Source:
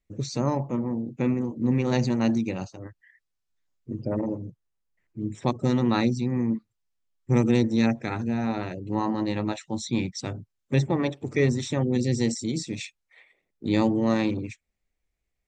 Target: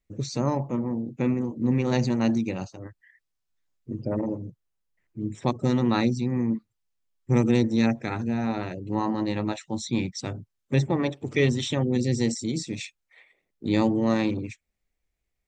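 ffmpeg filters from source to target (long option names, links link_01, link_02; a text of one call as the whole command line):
ffmpeg -i in.wav -filter_complex "[0:a]asettb=1/sr,asplit=3[link_01][link_02][link_03];[link_01]atrim=end=11.284[link_04];[link_02]atrim=start=11.28:end=11.75,asetpts=PTS-STARTPTS,afade=type=in:duration=0.004:curve=qsin,afade=type=out:start_time=0.466:duration=0.004:curve=qsin,equalizer=frequency=3100:width_type=o:width=0.41:gain=14.5[link_05];[link_03]atrim=start=11.746[link_06];[link_04][link_05]acrossfade=duration=0.004:curve1=hsin:curve2=qsin[link_07];[link_07][link_06]acrossfade=duration=0.004:curve1=qsin:curve2=hsin" out.wav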